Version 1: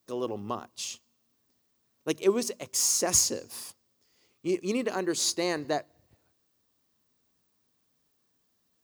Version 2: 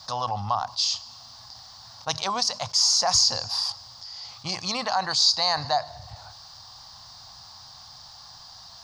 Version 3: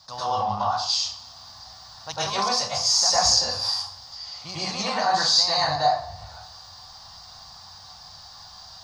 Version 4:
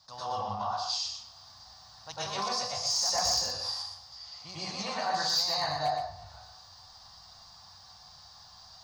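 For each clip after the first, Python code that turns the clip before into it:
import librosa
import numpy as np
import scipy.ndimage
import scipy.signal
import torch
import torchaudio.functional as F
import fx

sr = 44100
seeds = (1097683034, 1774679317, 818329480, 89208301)

y1 = fx.curve_eq(x, sr, hz=(120.0, 380.0, 780.0, 2500.0, 4800.0, 7800.0, 14000.0), db=(0, -30, 9, -8, 13, -11, -25))
y1 = fx.env_flatten(y1, sr, amount_pct=50)
y2 = fx.rev_plate(y1, sr, seeds[0], rt60_s=0.52, hf_ratio=0.7, predelay_ms=90, drr_db=-10.0)
y2 = y2 * librosa.db_to_amplitude(-7.5)
y3 = np.clip(10.0 ** (13.5 / 20.0) * y2, -1.0, 1.0) / 10.0 ** (13.5 / 20.0)
y3 = y3 + 10.0 ** (-6.5 / 20.0) * np.pad(y3, (int(121 * sr / 1000.0), 0))[:len(y3)]
y3 = y3 * librosa.db_to_amplitude(-9.0)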